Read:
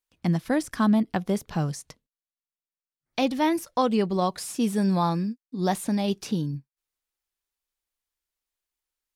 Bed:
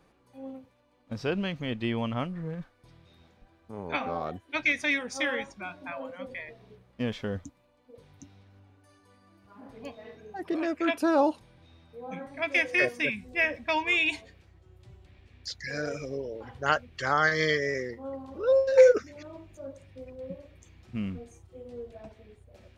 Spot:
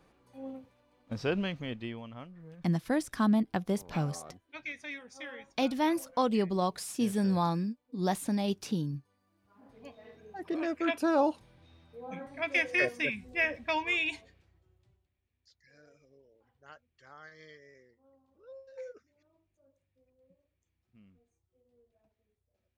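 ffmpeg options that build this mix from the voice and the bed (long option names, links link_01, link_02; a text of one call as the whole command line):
ffmpeg -i stem1.wav -i stem2.wav -filter_complex "[0:a]adelay=2400,volume=-5dB[link_01];[1:a]volume=10.5dB,afade=type=out:start_time=1.37:duration=0.65:silence=0.211349,afade=type=in:start_time=9.31:duration=1.33:silence=0.266073,afade=type=out:start_time=13.67:duration=1.42:silence=0.0595662[link_02];[link_01][link_02]amix=inputs=2:normalize=0" out.wav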